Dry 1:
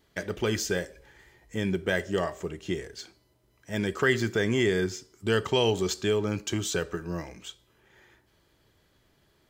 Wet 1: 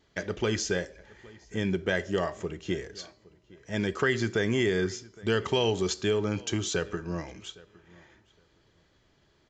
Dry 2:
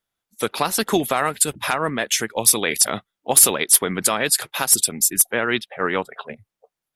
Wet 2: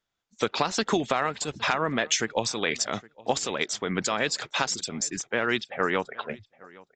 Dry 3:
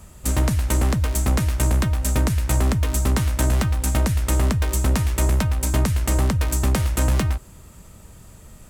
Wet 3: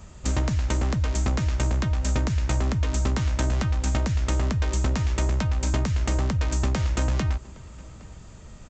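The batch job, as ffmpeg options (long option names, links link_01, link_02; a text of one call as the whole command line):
ffmpeg -i in.wav -filter_complex "[0:a]acompressor=threshold=-20dB:ratio=6,asplit=2[link_01][link_02];[link_02]adelay=814,lowpass=frequency=3300:poles=1,volume=-22.5dB,asplit=2[link_03][link_04];[link_04]adelay=814,lowpass=frequency=3300:poles=1,volume=0.17[link_05];[link_01][link_03][link_05]amix=inputs=3:normalize=0,aresample=16000,aresample=44100" out.wav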